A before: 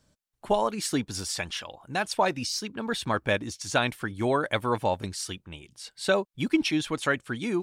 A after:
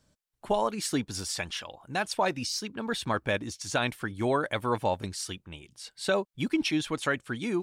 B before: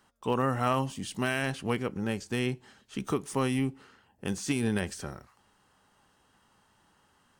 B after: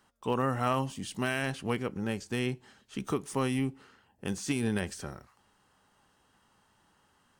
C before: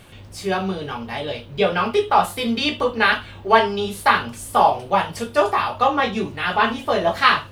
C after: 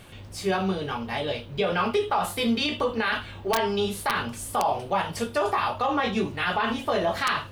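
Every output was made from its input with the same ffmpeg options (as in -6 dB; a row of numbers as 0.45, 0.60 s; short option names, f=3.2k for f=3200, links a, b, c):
-af "aeval=exprs='(mod(1.33*val(0)+1,2)-1)/1.33':c=same,alimiter=limit=-14dB:level=0:latency=1:release=49,volume=-1.5dB"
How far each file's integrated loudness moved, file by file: -2.0, -1.5, -6.5 LU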